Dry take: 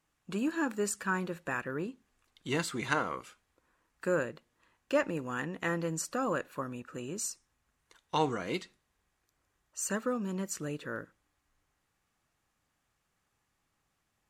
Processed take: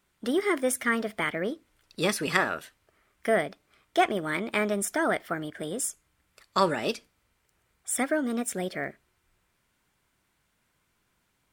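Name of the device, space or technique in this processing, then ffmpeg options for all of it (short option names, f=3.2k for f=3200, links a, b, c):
nightcore: -af "asetrate=54684,aresample=44100,volume=6dB"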